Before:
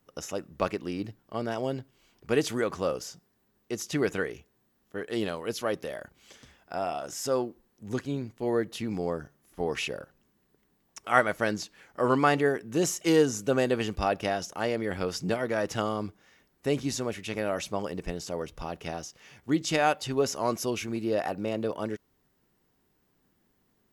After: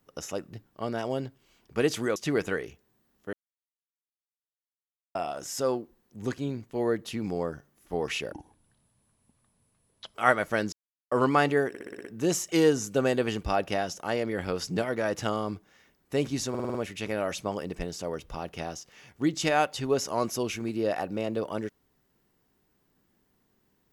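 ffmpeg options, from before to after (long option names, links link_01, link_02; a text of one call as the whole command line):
ffmpeg -i in.wav -filter_complex "[0:a]asplit=20[link_01][link_02][link_03][link_04][link_05][link_06][link_07][link_08][link_09][link_10][link_11][link_12][link_13][link_14][link_15][link_16][link_17][link_18][link_19][link_20];[link_01]atrim=end=0.532[link_21];[link_02]atrim=start=1.058:end=2.692[link_22];[link_03]atrim=start=3.828:end=5,asetpts=PTS-STARTPTS,afade=type=out:start_time=1.168:duration=0.004:curve=hsin[link_23];[link_04]atrim=start=5:end=6.82,asetpts=PTS-STARTPTS,volume=0[link_24];[link_05]atrim=start=6.82:end=9.994,asetpts=PTS-STARTPTS,afade=type=in:duration=0.004:curve=hsin[link_25];[link_06]atrim=start=9.99:end=11.03,asetpts=PTS-STARTPTS,asetrate=25137,aresample=44100,atrim=end_sample=80463,asetpts=PTS-STARTPTS[link_26];[link_07]atrim=start=11.026:end=11.61,asetpts=PTS-STARTPTS,afade=type=out:start_time=0.58:duration=0.004:curve=hsin[link_27];[link_08]atrim=start=11.61:end=12,asetpts=PTS-STARTPTS,volume=0[link_28];[link_09]atrim=start=12:end=12.632,asetpts=PTS-STARTPTS,afade=type=in:duration=0.004:curve=hsin[link_29];[link_10]atrim=start=12.568:end=12.632[link_30];[link_11]atrim=start=12.568:end=12.632[link_31];[link_12]atrim=start=12.568:end=12.632[link_32];[link_13]atrim=start=12.568:end=12.632[link_33];[link_14]atrim=start=12.568:end=12.632[link_34];[link_15]atrim=start=12.568:end=17.072[link_35];[link_16]atrim=start=17.018:end=17.072[link_36];[link_17]atrim=start=17.018:end=17.072[link_37];[link_18]atrim=start=17.018:end=17.072[link_38];[link_19]atrim=start=17.018:end=17.072[link_39];[link_20]atrim=start=17.018[link_40];[link_21][link_22]acrossfade=duration=0.004:curve1=hsin:curve2=hsin[link_41];[link_23][link_24][link_25]concat=n=3:v=0:a=1[link_42];[link_41][link_42]acrossfade=duration=0.004:curve1=hsin:curve2=hsin[link_43];[link_43][link_26]acrossfade=duration=0.004:curve1=hsin:curve2=hsin[link_44];[link_27][link_28][link_29]concat=n=3:v=0:a=1[link_45];[link_44][link_45]acrossfade=duration=0.004:curve1=hsin:curve2=hsin[link_46];[link_46][link_30]acrossfade=duration=0.004:curve1=hsin:curve2=hsin[link_47];[link_47][link_31]acrossfade=duration=0.004:curve1=hsin:curve2=hsin[link_48];[link_48][link_32]acrossfade=duration=0.004:curve1=hsin:curve2=hsin[link_49];[link_49][link_33]acrossfade=duration=0.004:curve1=hsin:curve2=hsin[link_50];[link_50][link_34]acrossfade=duration=0.004:curve1=hsin:curve2=hsin[link_51];[link_51][link_35]acrossfade=duration=0.004:curve1=hsin:curve2=hsin[link_52];[link_52][link_36]acrossfade=duration=0.004:curve1=hsin:curve2=hsin[link_53];[link_53][link_37]acrossfade=duration=0.004:curve1=hsin:curve2=hsin[link_54];[link_54][link_38]acrossfade=duration=0.004:curve1=hsin:curve2=hsin[link_55];[link_55][link_39]acrossfade=duration=0.004:curve1=hsin:curve2=hsin[link_56];[link_56][link_40]acrossfade=duration=0.004:curve1=hsin:curve2=hsin" out.wav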